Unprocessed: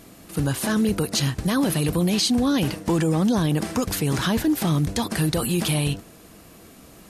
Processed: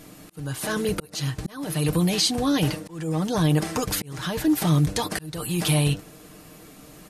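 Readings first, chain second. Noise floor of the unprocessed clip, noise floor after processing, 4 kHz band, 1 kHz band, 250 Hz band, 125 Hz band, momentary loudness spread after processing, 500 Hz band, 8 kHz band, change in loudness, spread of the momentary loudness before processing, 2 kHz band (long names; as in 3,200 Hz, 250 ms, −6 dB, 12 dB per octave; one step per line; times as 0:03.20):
−48 dBFS, −48 dBFS, −1.0 dB, −1.5 dB, −3.5 dB, −0.5 dB, 10 LU, −2.0 dB, −1.0 dB, −2.0 dB, 4 LU, −1.5 dB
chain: dynamic equaliser 240 Hz, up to −5 dB, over −36 dBFS, Q 2.1
comb filter 6.6 ms, depth 50%
volume swells 501 ms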